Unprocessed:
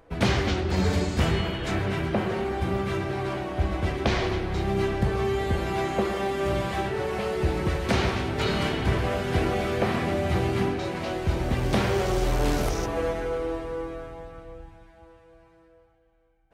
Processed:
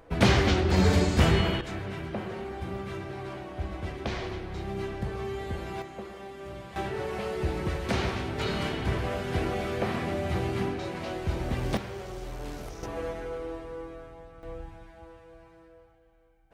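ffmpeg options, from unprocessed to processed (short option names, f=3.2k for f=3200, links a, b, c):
-af "asetnsamples=n=441:p=0,asendcmd='1.61 volume volume -8.5dB;5.82 volume volume -15dB;6.76 volume volume -4.5dB;11.77 volume volume -14dB;12.83 volume volume -7dB;14.43 volume volume 2.5dB',volume=2dB"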